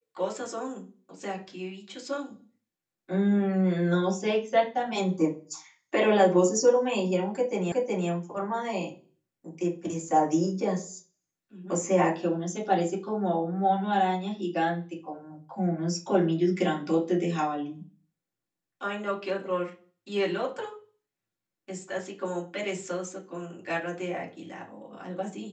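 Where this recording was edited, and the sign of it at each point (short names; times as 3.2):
7.72 repeat of the last 0.37 s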